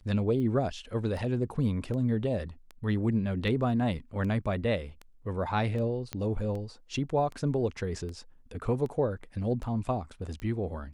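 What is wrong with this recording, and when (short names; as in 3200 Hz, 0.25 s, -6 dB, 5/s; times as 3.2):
tick 78 rpm -28 dBFS
6.13 pop -18 dBFS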